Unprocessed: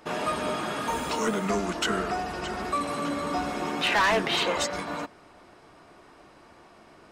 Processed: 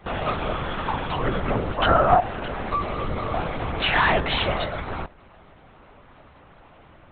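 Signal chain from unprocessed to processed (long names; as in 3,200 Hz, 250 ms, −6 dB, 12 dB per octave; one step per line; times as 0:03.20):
0:01.78–0:02.20: flat-topped bell 770 Hz +12 dB
linear-prediction vocoder at 8 kHz whisper
level +3 dB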